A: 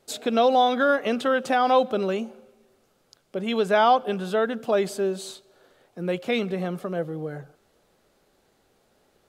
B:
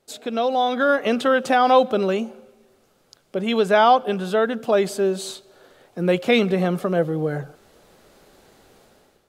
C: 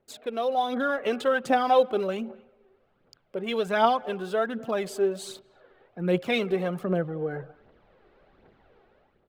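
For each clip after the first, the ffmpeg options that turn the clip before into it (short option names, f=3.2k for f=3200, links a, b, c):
-af "dynaudnorm=f=550:g=3:m=16dB,volume=-3.5dB"
-filter_complex "[0:a]aphaser=in_gain=1:out_gain=1:delay=2.8:decay=0.5:speed=1.3:type=triangular,acrossover=split=3100[a][b];[b]aeval=exprs='sgn(val(0))*max(abs(val(0))-0.00355,0)':c=same[c];[a][c]amix=inputs=2:normalize=0,asplit=2[d][e];[e]adelay=240,highpass=300,lowpass=3.4k,asoftclip=type=hard:threshold=-10.5dB,volume=-25dB[f];[d][f]amix=inputs=2:normalize=0,volume=-7.5dB"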